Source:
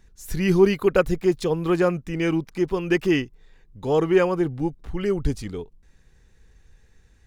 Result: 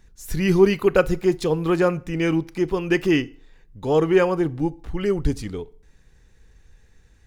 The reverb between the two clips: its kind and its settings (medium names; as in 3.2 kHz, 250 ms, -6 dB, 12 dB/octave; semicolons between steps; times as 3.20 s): FDN reverb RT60 0.49 s, low-frequency decay 0.9×, high-frequency decay 0.85×, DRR 16.5 dB; trim +1.5 dB